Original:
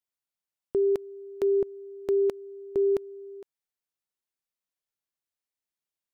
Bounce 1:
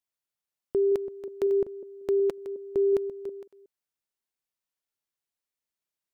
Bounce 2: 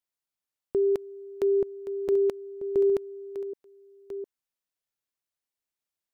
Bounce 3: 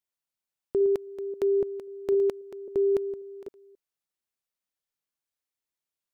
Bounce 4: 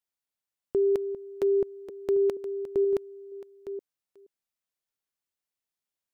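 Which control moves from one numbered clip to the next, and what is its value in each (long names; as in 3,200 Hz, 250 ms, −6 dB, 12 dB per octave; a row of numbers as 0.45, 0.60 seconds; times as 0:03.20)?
delay that plays each chunk backwards, delay time: 183, 707, 268, 474 milliseconds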